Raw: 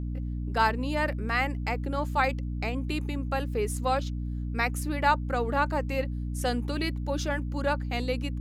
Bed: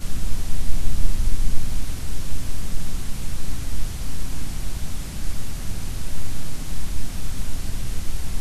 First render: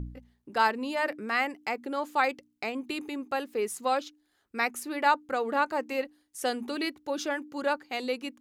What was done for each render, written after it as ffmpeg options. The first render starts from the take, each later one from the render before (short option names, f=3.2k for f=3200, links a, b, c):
-af "bandreject=f=60:t=h:w=4,bandreject=f=120:t=h:w=4,bandreject=f=180:t=h:w=4,bandreject=f=240:t=h:w=4,bandreject=f=300:t=h:w=4"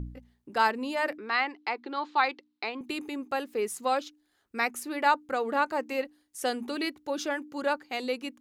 -filter_complex "[0:a]asettb=1/sr,asplit=3[a][b][c];[a]atrim=end=1.184[d];[b]atrim=start=1.18:end=2.81,asetpts=PTS-STARTPTS,afade=t=in:d=0.004:c=qsin,afade=t=out:st=1.626:d=0.004:c=qsin,highpass=340,equalizer=f=350:t=q:w=4:g=5,equalizer=f=580:t=q:w=4:g=-8,equalizer=f=970:t=q:w=4:g=5,equalizer=f=4k:t=q:w=4:g=7,lowpass=f=4.7k:w=0.5412,lowpass=f=4.7k:w=1.3066[e];[c]atrim=start=2.806[f];[d][e]acrossfade=d=0.004:c1=hsin:c2=qsin[g];[g][f]acrossfade=d=0.004:c1=qsin:c2=hsin"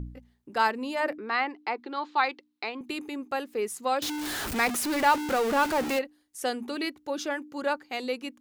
-filter_complex "[0:a]asettb=1/sr,asplit=3[a][b][c];[a]atrim=end=1.004[d];[b]atrim=start=1:end=1.8,asetpts=PTS-STARTPTS,afade=t=in:d=0.004:c=qsin,afade=t=out:st=0.796:d=0.004:c=qsin,tiltshelf=f=1.4k:g=3.5[e];[c]atrim=start=1.796[f];[d][e]acrossfade=d=0.004:c1=hsin:c2=qsin[g];[g][f]acrossfade=d=0.004:c1=qsin:c2=hsin,asettb=1/sr,asplit=3[h][i][j];[h]atrim=end=4.024[k];[i]atrim=start=4.02:end=5.99,asetpts=PTS-STARTPTS,afade=t=in:d=0.004:c=qsin,afade=t=out:st=1.966:d=0.004:c=qsin,aeval=exprs='val(0)+0.5*0.0473*sgn(val(0))':c=same[l];[j]atrim=start=5.986[m];[k][l]acrossfade=d=0.004:c1=hsin:c2=qsin[n];[n][m]acrossfade=d=0.004:c1=qsin:c2=hsin"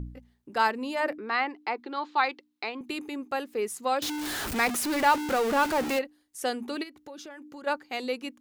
-filter_complex "[0:a]asplit=3[a][b][c];[a]afade=t=out:st=6.82:d=0.02[d];[b]acompressor=threshold=-40dB:ratio=8:attack=3.2:release=140:knee=1:detection=peak,afade=t=in:st=6.82:d=0.02,afade=t=out:st=7.66:d=0.02[e];[c]afade=t=in:st=7.66:d=0.02[f];[d][e][f]amix=inputs=3:normalize=0"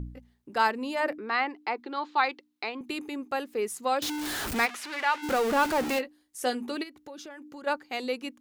-filter_complex "[0:a]asplit=3[a][b][c];[a]afade=t=out:st=4.65:d=0.02[d];[b]bandpass=f=2.1k:t=q:w=0.84,afade=t=in:st=4.65:d=0.02,afade=t=out:st=5.22:d=0.02[e];[c]afade=t=in:st=5.22:d=0.02[f];[d][e][f]amix=inputs=3:normalize=0,asettb=1/sr,asplit=3[g][h][i];[g]atrim=end=5.914[j];[h]atrim=start=5.91:end=6.72,asetpts=PTS-STARTPTS,afade=t=in:d=0.004:c=qsin,afade=t=out:st=0.806:d=0.004:c=qsin,asplit=2[k][l];[l]adelay=16,volume=-9dB[m];[k][m]amix=inputs=2:normalize=0,atrim=end_sample=35721[n];[i]atrim=start=6.716[o];[j][n]acrossfade=d=0.004:c1=hsin:c2=qsin[p];[p][o]acrossfade=d=0.004:c1=qsin:c2=hsin"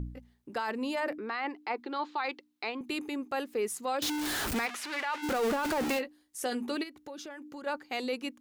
-af "alimiter=limit=-23.5dB:level=0:latency=1:release=12"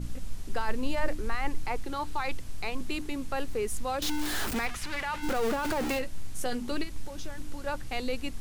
-filter_complex "[1:a]volume=-14dB[a];[0:a][a]amix=inputs=2:normalize=0"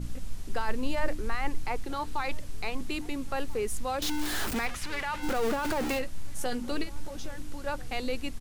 -filter_complex "[0:a]asplit=2[a][b];[b]adelay=1341,volume=-20dB,highshelf=f=4k:g=-30.2[c];[a][c]amix=inputs=2:normalize=0"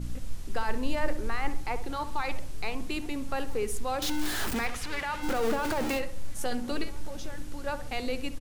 -filter_complex "[0:a]asplit=2[a][b];[b]adelay=66,lowpass=f=1.7k:p=1,volume=-11dB,asplit=2[c][d];[d]adelay=66,lowpass=f=1.7k:p=1,volume=0.49,asplit=2[e][f];[f]adelay=66,lowpass=f=1.7k:p=1,volume=0.49,asplit=2[g][h];[h]adelay=66,lowpass=f=1.7k:p=1,volume=0.49,asplit=2[i][j];[j]adelay=66,lowpass=f=1.7k:p=1,volume=0.49[k];[a][c][e][g][i][k]amix=inputs=6:normalize=0"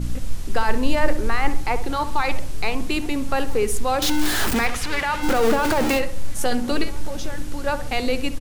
-af "volume=9.5dB"